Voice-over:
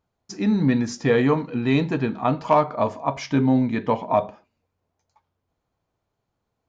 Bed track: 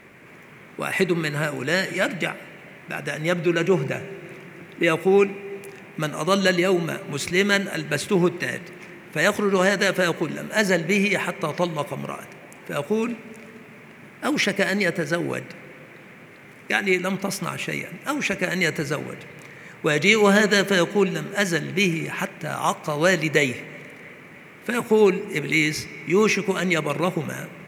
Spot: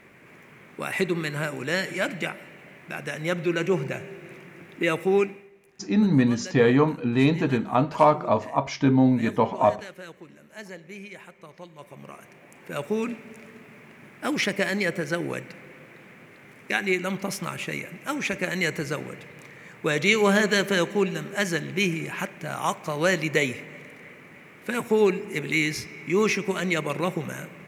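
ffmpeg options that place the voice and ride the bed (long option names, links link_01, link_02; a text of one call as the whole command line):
ffmpeg -i stem1.wav -i stem2.wav -filter_complex "[0:a]adelay=5500,volume=0dB[link_01];[1:a]volume=13dB,afade=type=out:start_time=5.18:duration=0.33:silence=0.149624,afade=type=in:start_time=11.74:duration=1.18:silence=0.141254[link_02];[link_01][link_02]amix=inputs=2:normalize=0" out.wav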